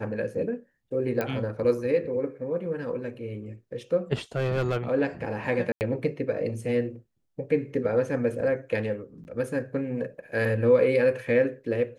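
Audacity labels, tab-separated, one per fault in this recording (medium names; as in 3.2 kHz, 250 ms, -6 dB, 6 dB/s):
1.210000	1.210000	pop -15 dBFS
4.360000	4.770000	clipped -21 dBFS
5.720000	5.810000	dropout 89 ms
9.240000	9.250000	dropout 9.9 ms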